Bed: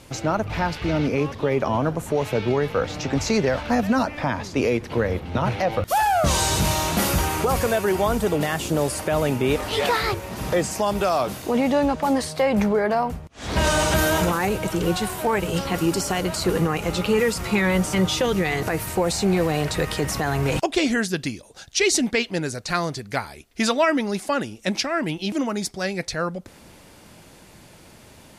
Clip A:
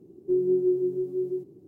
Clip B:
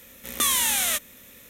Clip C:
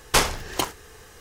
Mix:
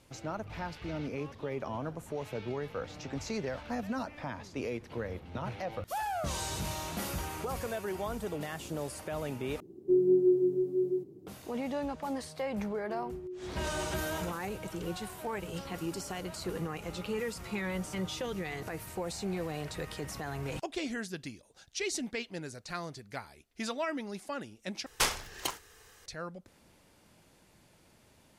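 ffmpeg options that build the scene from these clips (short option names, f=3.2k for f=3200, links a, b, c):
-filter_complex "[1:a]asplit=2[a][b];[0:a]volume=-15dB[c];[b]alimiter=limit=-21dB:level=0:latency=1:release=71[d];[3:a]tiltshelf=f=890:g=-3.5[e];[c]asplit=3[f][g][h];[f]atrim=end=9.604[i];[a]atrim=end=1.67,asetpts=PTS-STARTPTS,volume=-1dB[j];[g]atrim=start=11.266:end=24.864[k];[e]atrim=end=1.2,asetpts=PTS-STARTPTS,volume=-11dB[l];[h]atrim=start=26.056[m];[d]atrim=end=1.67,asetpts=PTS-STARTPTS,volume=-16dB,afade=t=in:d=0.004:c=hsin,afade=t=out:st=1.666:d=0.004:c=hsin,adelay=12610[n];[i][j]acrossfade=d=0.004:c1=hsin:c2=hsin[o];[o][k]acrossfade=d=0.004:c1=hsin:c2=hsin[p];[p][l]acrossfade=d=0.004:c1=hsin:c2=hsin[q];[q][m]acrossfade=d=0.004:c1=hsin:c2=hsin[r];[r][n]amix=inputs=2:normalize=0"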